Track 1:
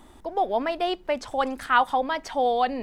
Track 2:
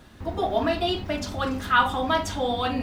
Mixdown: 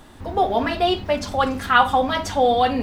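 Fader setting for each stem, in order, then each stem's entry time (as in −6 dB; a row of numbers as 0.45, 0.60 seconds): +3.0, +1.0 decibels; 0.00, 0.00 seconds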